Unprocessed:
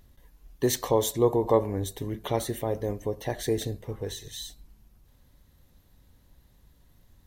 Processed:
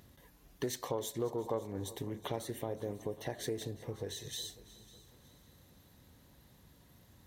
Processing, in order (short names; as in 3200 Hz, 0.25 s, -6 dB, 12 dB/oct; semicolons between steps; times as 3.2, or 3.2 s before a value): HPF 100 Hz 12 dB/oct; compressor 2.5:1, threshold -44 dBFS, peak gain reduction 18.5 dB; multi-head echo 0.183 s, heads second and third, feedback 41%, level -19.5 dB; Doppler distortion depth 0.14 ms; gain +3 dB